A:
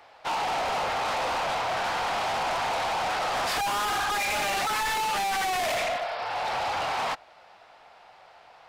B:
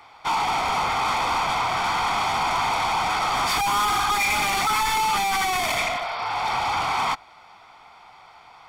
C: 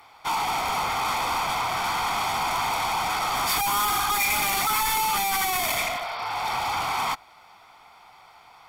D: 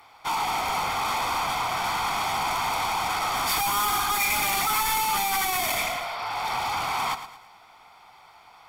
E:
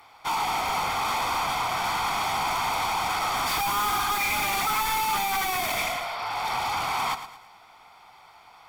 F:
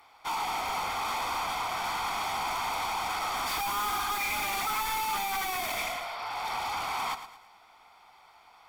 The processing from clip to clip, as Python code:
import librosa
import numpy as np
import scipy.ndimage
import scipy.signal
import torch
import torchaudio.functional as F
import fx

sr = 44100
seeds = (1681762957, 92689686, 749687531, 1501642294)

y1 = x + 0.66 * np.pad(x, (int(0.9 * sr / 1000.0), 0))[:len(x)]
y1 = F.gain(torch.from_numpy(y1), 3.5).numpy()
y2 = fx.peak_eq(y1, sr, hz=14000.0, db=14.5, octaves=0.89)
y2 = F.gain(torch.from_numpy(y2), -3.0).numpy()
y3 = fx.echo_feedback(y2, sr, ms=111, feedback_pct=39, wet_db=-11.5)
y3 = F.gain(torch.from_numpy(y3), -1.0).numpy()
y4 = fx.slew_limit(y3, sr, full_power_hz=280.0)
y5 = fx.peak_eq(y4, sr, hz=130.0, db=-6.0, octaves=0.92)
y5 = F.gain(torch.from_numpy(y5), -5.0).numpy()